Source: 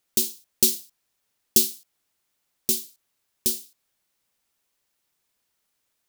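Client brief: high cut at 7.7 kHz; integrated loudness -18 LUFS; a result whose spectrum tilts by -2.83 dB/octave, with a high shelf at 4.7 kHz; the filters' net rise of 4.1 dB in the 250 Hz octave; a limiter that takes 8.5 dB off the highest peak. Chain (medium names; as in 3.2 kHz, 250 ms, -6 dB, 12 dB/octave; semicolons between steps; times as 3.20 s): low-pass 7.7 kHz; peaking EQ 250 Hz +5 dB; treble shelf 4.7 kHz -5.5 dB; trim +17 dB; peak limiter 0 dBFS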